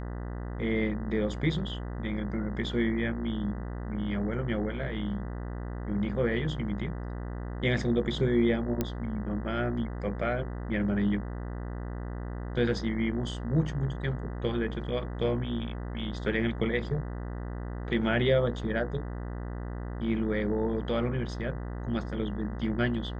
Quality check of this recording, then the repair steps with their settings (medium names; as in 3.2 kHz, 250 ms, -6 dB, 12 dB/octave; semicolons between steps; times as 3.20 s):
buzz 60 Hz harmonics 33 -36 dBFS
8.81 s: pop -14 dBFS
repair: de-click; de-hum 60 Hz, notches 33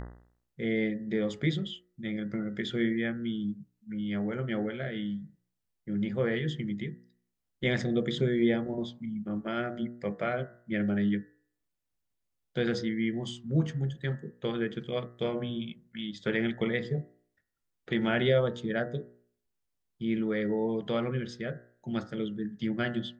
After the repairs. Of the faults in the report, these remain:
nothing left